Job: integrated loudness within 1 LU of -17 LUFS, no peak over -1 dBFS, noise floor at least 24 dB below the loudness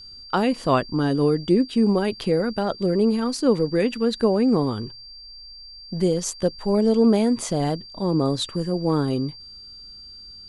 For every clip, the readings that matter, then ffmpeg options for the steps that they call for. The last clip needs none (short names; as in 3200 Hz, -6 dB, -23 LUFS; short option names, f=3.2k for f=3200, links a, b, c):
steady tone 4700 Hz; tone level -40 dBFS; loudness -22.0 LUFS; peak -7.0 dBFS; loudness target -17.0 LUFS
-> -af "bandreject=f=4.7k:w=30"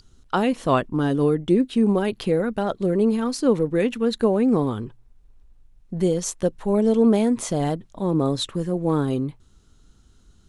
steady tone none; loudness -22.0 LUFS; peak -7.0 dBFS; loudness target -17.0 LUFS
-> -af "volume=5dB"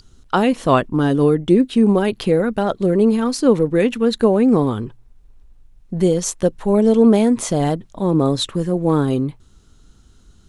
loudness -17.0 LUFS; peak -2.0 dBFS; noise floor -50 dBFS